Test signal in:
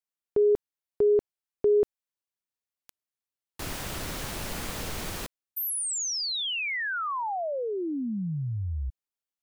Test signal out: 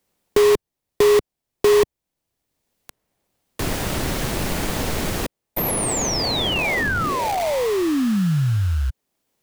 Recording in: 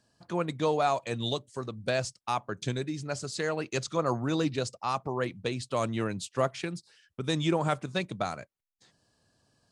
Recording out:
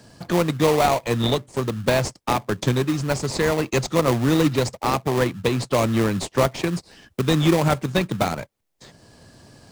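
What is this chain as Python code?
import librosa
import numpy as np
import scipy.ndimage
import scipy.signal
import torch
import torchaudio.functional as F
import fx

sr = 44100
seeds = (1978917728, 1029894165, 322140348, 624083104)

p1 = fx.sample_hold(x, sr, seeds[0], rate_hz=1500.0, jitter_pct=20)
p2 = x + (p1 * librosa.db_to_amplitude(-3.0))
p3 = fx.band_squash(p2, sr, depth_pct=40)
y = p3 * librosa.db_to_amplitude(6.5)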